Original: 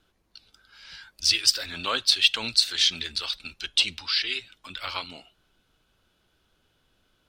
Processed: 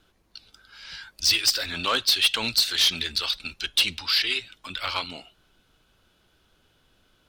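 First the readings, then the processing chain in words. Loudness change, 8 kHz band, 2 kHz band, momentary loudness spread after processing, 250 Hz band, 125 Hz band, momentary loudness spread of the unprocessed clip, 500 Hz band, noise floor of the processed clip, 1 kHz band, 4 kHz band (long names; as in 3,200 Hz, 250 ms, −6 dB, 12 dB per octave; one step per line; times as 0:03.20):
+1.0 dB, +1.0 dB, +2.0 dB, 15 LU, +4.0 dB, +4.0 dB, 13 LU, +3.5 dB, −66 dBFS, +3.5 dB, +1.0 dB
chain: soft clipping −18.5 dBFS, distortion −9 dB
level +4.5 dB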